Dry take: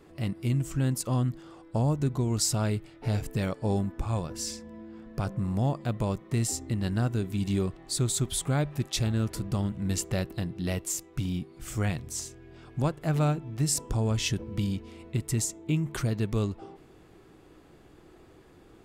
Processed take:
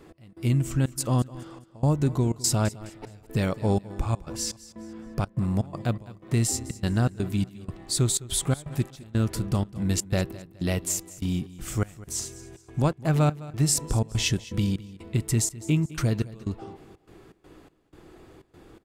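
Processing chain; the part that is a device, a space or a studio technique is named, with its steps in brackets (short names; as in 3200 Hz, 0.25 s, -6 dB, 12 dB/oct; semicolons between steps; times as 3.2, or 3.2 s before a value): trance gate with a delay (step gate "x..xxxx.xx.x" 123 bpm -24 dB; feedback echo 0.209 s, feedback 33%, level -18 dB); gain +4 dB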